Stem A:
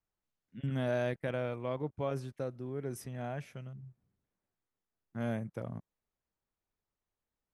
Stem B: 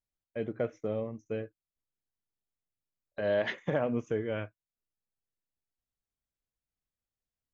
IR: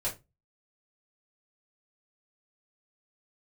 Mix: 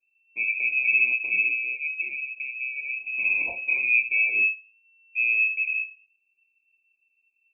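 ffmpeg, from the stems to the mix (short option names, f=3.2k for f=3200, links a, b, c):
-filter_complex "[0:a]lowshelf=f=140:g=6.5,volume=2dB,asplit=2[a][b];[b]volume=-5.5dB[c];[1:a]volume=3dB,asplit=3[d][e][f];[e]volume=-4dB[g];[f]apad=whole_len=332432[h];[a][h]sidechaincompress=threshold=-31dB:ratio=8:attack=16:release=140[i];[2:a]atrim=start_sample=2205[j];[c][g]amix=inputs=2:normalize=0[k];[k][j]afir=irnorm=-1:irlink=0[l];[i][d][l]amix=inputs=3:normalize=0,asuperstop=centerf=950:order=12:qfactor=0.52,lowshelf=f=270:g=6,lowpass=f=2.3k:t=q:w=0.5098,lowpass=f=2.3k:t=q:w=0.6013,lowpass=f=2.3k:t=q:w=0.9,lowpass=f=2.3k:t=q:w=2.563,afreqshift=-2700"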